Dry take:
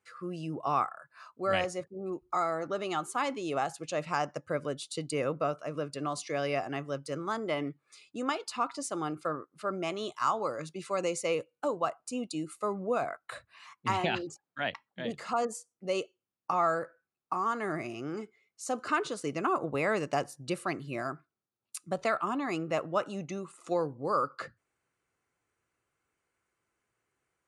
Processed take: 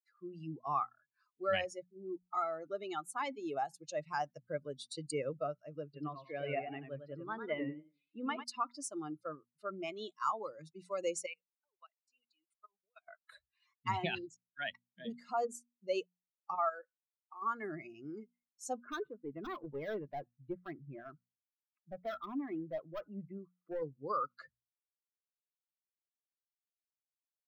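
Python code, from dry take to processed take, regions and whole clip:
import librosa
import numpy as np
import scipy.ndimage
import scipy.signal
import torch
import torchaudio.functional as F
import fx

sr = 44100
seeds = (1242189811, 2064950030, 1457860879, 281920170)

y = fx.chain(x, sr, fx.lowpass(hz=3500.0, slope=24),
    fx.echo_warbled(ms=94, feedback_pct=40, rate_hz=2.8, cents=124, wet_db=-4.5), at=(5.84, 8.44))
y = fx.chain(y, sr, fx.bandpass_q(hz=2600.0, q=1.0),
    fx.level_steps(step_db=19), at=(11.26, 13.08))
y = fx.chain(y, sr, fx.highpass(hz=390.0, slope=12),
    fx.level_steps(step_db=9), at=(16.55, 17.42))
y = fx.chain(y, sr, fx.lowpass(hz=2000.0, slope=24),
    fx.overload_stage(gain_db=29.0), at=(18.78, 23.82))
y = fx.bin_expand(y, sr, power=2.0)
y = fx.hum_notches(y, sr, base_hz=60, count=4)
y = y * librosa.db_to_amplitude(-1.0)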